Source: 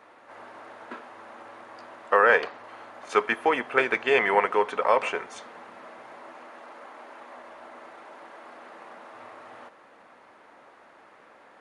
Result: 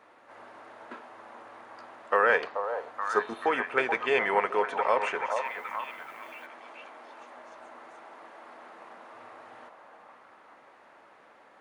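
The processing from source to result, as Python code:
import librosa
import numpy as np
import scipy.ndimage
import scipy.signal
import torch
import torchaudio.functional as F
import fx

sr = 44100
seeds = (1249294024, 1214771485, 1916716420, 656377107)

y = fx.spec_repair(x, sr, seeds[0], start_s=3.14, length_s=0.3, low_hz=1300.0, high_hz=4300.0, source='before')
y = fx.echo_stepped(y, sr, ms=431, hz=730.0, octaves=0.7, feedback_pct=70, wet_db=-3.5)
y = fx.dmg_noise_colour(y, sr, seeds[1], colour='blue', level_db=-62.0, at=(5.44, 6.45), fade=0.02)
y = y * librosa.db_to_amplitude(-4.0)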